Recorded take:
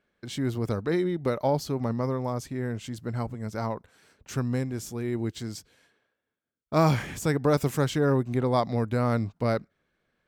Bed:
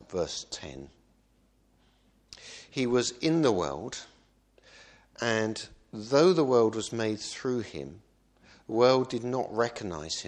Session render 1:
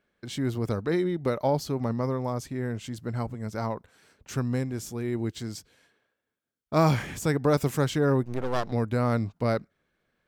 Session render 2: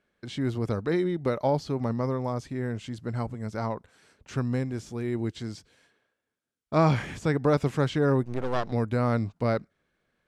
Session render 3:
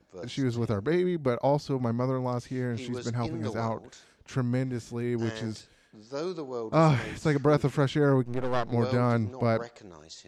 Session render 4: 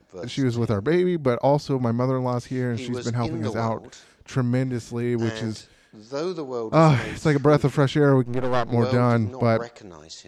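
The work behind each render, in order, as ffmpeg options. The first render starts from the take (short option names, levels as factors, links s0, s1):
-filter_complex "[0:a]asettb=1/sr,asplit=3[s0][s1][s2];[s0]atrim=end=8.234[s3];[s1]atrim=start=8.23:end=8.72,asetpts=PTS-STARTPTS,afade=t=in:d=0.004:c=qsin,afade=t=out:st=0.486:d=0.004:c=qsin,aeval=exprs='max(val(0),0)':c=same[s4];[s2]atrim=start=8.716[s5];[s3][s4]acrossfade=d=0.004:c1=hsin:c2=qsin[s6];[s6][s5]acrossfade=d=0.004:c1=qsin:c2=hsin"
-filter_complex "[0:a]acrossover=split=4700[s0][s1];[s1]acompressor=threshold=0.00251:ratio=4:attack=1:release=60[s2];[s0][s2]amix=inputs=2:normalize=0,lowpass=f=11000:w=0.5412,lowpass=f=11000:w=1.3066"
-filter_complex "[1:a]volume=0.251[s0];[0:a][s0]amix=inputs=2:normalize=0"
-af "volume=1.88"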